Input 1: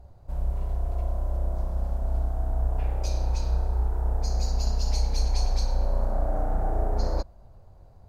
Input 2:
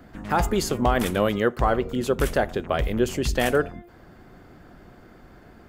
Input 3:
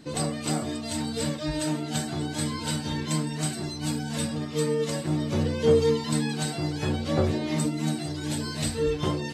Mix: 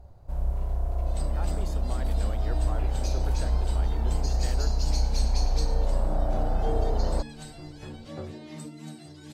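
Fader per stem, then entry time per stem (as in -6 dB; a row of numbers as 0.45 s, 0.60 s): 0.0 dB, -19.5 dB, -14.0 dB; 0.00 s, 1.05 s, 1.00 s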